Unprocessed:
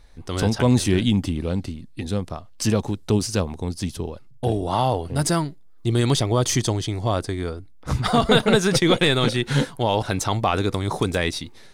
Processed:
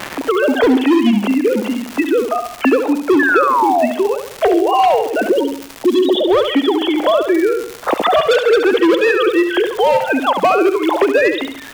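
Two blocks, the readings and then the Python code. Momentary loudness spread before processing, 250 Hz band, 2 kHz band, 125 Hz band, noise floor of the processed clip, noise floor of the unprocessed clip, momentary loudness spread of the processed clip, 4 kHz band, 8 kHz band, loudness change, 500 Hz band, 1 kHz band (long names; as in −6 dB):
12 LU, +8.0 dB, +10.0 dB, below −15 dB, −33 dBFS, −44 dBFS, 6 LU, +2.5 dB, −6.0 dB, +7.5 dB, +11.0 dB, +10.5 dB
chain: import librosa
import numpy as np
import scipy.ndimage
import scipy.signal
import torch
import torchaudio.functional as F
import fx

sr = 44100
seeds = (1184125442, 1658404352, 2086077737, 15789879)

p1 = fx.sine_speech(x, sr)
p2 = fx.spec_erase(p1, sr, start_s=5.28, length_s=1.03, low_hz=930.0, high_hz=2800.0)
p3 = scipy.signal.sosfilt(scipy.signal.butter(4, 300.0, 'highpass', fs=sr, output='sos'), p2)
p4 = fx.dynamic_eq(p3, sr, hz=1200.0, q=0.79, threshold_db=-34.0, ratio=4.0, max_db=-5)
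p5 = fx.rider(p4, sr, range_db=4, speed_s=2.0)
p6 = p4 + (p5 * 10.0 ** (2.5 / 20.0))
p7 = fx.vibrato(p6, sr, rate_hz=0.55, depth_cents=25.0)
p8 = fx.dmg_crackle(p7, sr, seeds[0], per_s=260.0, level_db=-27.0)
p9 = np.clip(p8, -10.0 ** (-11.0 / 20.0), 10.0 ** (-11.0 / 20.0))
p10 = fx.spec_paint(p9, sr, seeds[1], shape='fall', start_s=3.19, length_s=0.67, low_hz=600.0, high_hz=1800.0, level_db=-18.0)
p11 = p10 + fx.echo_feedback(p10, sr, ms=69, feedback_pct=38, wet_db=-8, dry=0)
p12 = fx.band_squash(p11, sr, depth_pct=70)
y = p12 * 10.0 ** (3.0 / 20.0)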